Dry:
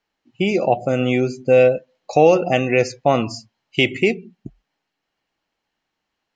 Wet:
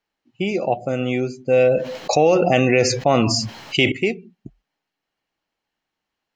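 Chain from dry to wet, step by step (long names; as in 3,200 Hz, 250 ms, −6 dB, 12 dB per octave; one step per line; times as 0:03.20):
0:01.53–0:03.92: envelope flattener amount 70%
level −3.5 dB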